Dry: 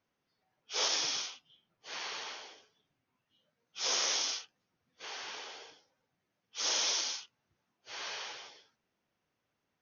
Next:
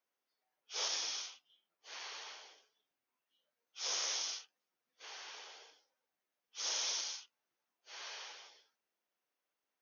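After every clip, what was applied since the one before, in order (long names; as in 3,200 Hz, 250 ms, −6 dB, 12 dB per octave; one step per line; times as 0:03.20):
high-pass filter 400 Hz 12 dB per octave
high-shelf EQ 9,200 Hz +9.5 dB
level −7.5 dB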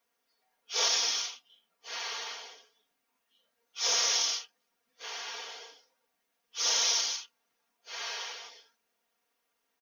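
comb filter 4.3 ms, depth 78%
floating-point word with a short mantissa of 4 bits
level +8 dB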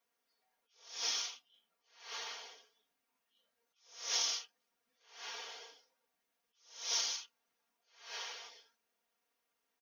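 level that may rise only so fast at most 120 dB per second
level −5 dB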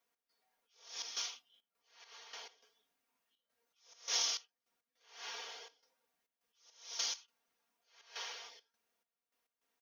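gate pattern "x.xxxxx.xxx.xx.." 103 BPM −12 dB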